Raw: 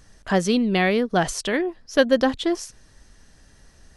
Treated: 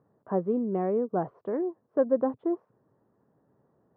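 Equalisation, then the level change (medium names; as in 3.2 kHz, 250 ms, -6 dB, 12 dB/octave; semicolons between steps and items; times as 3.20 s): elliptic band-pass 120–1100 Hz, stop band 70 dB; peaking EQ 430 Hz +5.5 dB 0.96 oct; -9.0 dB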